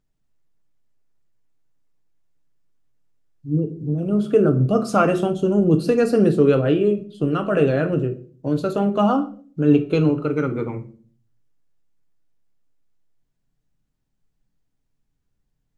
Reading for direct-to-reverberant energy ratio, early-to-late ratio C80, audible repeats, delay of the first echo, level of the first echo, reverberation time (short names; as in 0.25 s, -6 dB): 6.0 dB, 19.0 dB, none, none, none, 0.45 s